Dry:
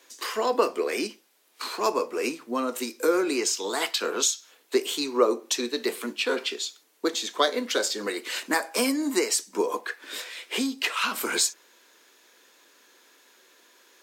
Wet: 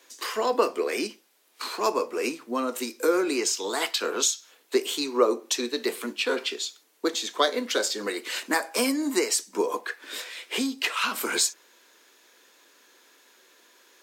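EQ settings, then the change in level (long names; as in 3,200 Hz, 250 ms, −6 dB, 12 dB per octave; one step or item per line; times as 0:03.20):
high-pass filter 130 Hz
0.0 dB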